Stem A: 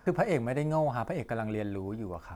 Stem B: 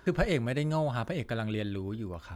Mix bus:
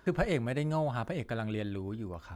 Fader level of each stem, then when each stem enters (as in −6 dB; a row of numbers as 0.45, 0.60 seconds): −12.5, −4.5 decibels; 0.00, 0.00 seconds